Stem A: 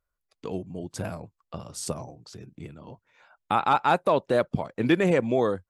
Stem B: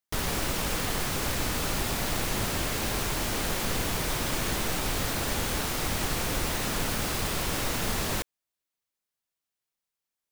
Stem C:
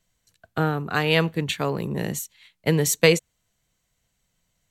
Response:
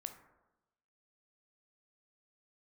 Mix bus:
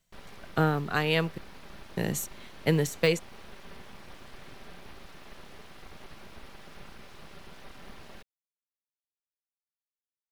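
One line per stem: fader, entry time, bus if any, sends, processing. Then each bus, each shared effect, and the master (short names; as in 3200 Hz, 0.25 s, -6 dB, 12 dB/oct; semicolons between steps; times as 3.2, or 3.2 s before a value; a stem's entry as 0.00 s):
off
-17.0 dB, 0.00 s, no send, running mean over 6 samples; comb 5.1 ms, depth 60%; full-wave rectifier
-0.5 dB, 0.00 s, muted 1.38–1.97, no send, de-esser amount 45%; tremolo triangle 0.55 Hz, depth 60%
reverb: off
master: companded quantiser 8-bit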